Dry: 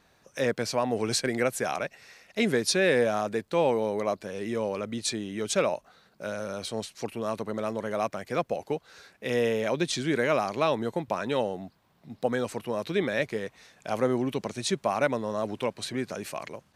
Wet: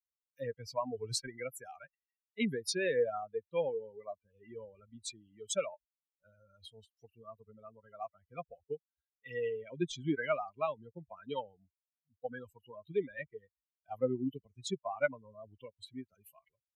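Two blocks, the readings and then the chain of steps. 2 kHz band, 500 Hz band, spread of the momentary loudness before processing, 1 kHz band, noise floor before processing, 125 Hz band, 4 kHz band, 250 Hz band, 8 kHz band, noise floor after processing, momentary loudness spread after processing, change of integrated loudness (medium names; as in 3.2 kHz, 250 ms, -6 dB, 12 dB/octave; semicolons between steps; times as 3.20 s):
-11.0 dB, -10.0 dB, 10 LU, -11.5 dB, -65 dBFS, -11.0 dB, -11.0 dB, -11.0 dB, -10.0 dB, under -85 dBFS, 20 LU, -9.0 dB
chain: expander on every frequency bin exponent 3; rotary cabinet horn 0.85 Hz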